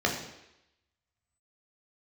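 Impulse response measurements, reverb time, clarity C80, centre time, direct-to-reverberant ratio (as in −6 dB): 0.85 s, 9.0 dB, 30 ms, −1.0 dB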